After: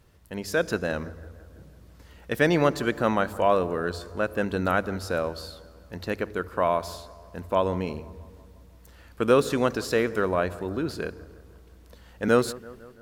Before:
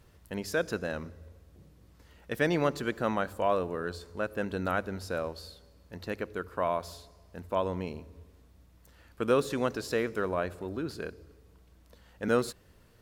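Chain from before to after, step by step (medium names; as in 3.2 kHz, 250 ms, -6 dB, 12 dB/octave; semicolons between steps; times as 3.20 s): level rider gain up to 6 dB; bucket-brigade echo 167 ms, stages 2048, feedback 61%, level -19.5 dB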